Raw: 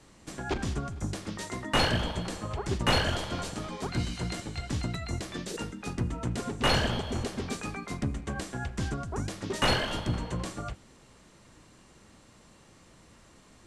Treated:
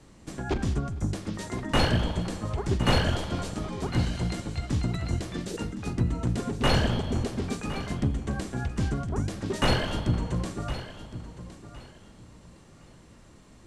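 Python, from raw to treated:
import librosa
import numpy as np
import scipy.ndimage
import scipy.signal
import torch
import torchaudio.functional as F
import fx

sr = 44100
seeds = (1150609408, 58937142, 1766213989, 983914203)

p1 = fx.low_shelf(x, sr, hz=480.0, db=7.0)
p2 = p1 + fx.echo_feedback(p1, sr, ms=1063, feedback_pct=24, wet_db=-13.5, dry=0)
y = p2 * 10.0 ** (-1.5 / 20.0)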